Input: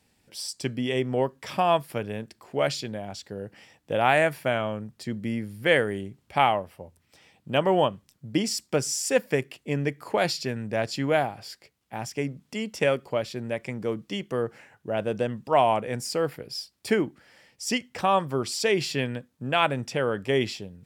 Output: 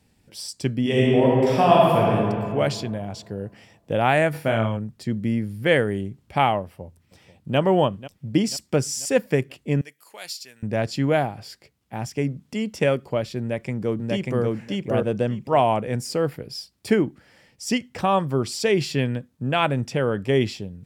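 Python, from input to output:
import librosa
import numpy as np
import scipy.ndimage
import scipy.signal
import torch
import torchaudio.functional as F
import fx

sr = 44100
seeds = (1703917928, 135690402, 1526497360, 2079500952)

y = fx.reverb_throw(x, sr, start_s=0.81, length_s=1.34, rt60_s=2.2, drr_db=-5.0)
y = fx.room_flutter(y, sr, wall_m=4.6, rt60_s=0.28, at=(4.33, 4.76), fade=0.02)
y = fx.echo_throw(y, sr, start_s=6.62, length_s=0.96, ms=490, feedback_pct=55, wet_db=-16.5)
y = fx.differentiator(y, sr, at=(9.81, 10.63))
y = fx.echo_throw(y, sr, start_s=13.4, length_s=1.03, ms=590, feedback_pct=15, wet_db=-0.5)
y = fx.low_shelf(y, sr, hz=320.0, db=9.0)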